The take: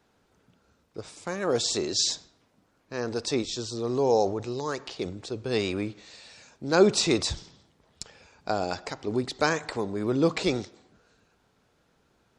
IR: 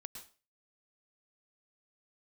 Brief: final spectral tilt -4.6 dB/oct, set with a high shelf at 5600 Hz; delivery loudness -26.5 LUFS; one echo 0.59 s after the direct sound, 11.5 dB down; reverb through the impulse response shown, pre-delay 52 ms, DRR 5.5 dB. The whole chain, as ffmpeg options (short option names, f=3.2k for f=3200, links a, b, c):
-filter_complex "[0:a]highshelf=f=5.6k:g=-8,aecho=1:1:590:0.266,asplit=2[a][b];[1:a]atrim=start_sample=2205,adelay=52[c];[b][c]afir=irnorm=-1:irlink=0,volume=-1dB[d];[a][d]amix=inputs=2:normalize=0,volume=1dB"